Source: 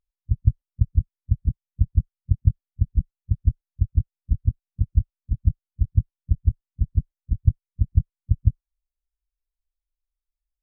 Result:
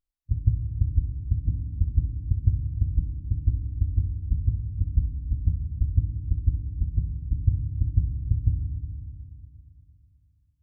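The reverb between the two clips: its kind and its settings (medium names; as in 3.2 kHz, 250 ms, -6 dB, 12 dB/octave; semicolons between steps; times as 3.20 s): FDN reverb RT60 2 s, low-frequency decay 1.45×, high-frequency decay 0.9×, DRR 4.5 dB; trim -4 dB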